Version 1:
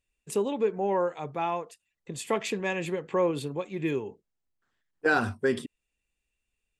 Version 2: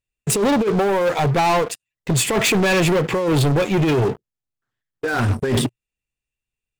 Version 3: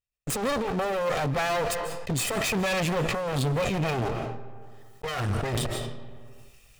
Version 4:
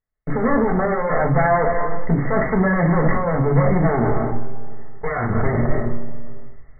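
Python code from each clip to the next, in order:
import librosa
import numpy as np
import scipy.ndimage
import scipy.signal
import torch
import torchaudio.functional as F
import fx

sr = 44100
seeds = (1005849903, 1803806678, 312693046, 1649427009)

y1 = fx.peak_eq(x, sr, hz=120.0, db=13.0, octaves=0.4)
y1 = fx.over_compress(y1, sr, threshold_db=-29.0, ratio=-0.5)
y1 = fx.leveller(y1, sr, passes=5)
y1 = y1 * librosa.db_to_amplitude(1.5)
y2 = fx.lower_of_two(y1, sr, delay_ms=1.6)
y2 = fx.rev_freeverb(y2, sr, rt60_s=0.77, hf_ratio=0.75, predelay_ms=115, drr_db=16.5)
y2 = fx.sustainer(y2, sr, db_per_s=23.0)
y2 = y2 * librosa.db_to_amplitude(-8.5)
y3 = fx.brickwall_lowpass(y2, sr, high_hz=2200.0)
y3 = fx.room_shoebox(y3, sr, seeds[0], volume_m3=250.0, walls='furnished', distance_m=1.5)
y3 = y3 * librosa.db_to_amplitude(6.0)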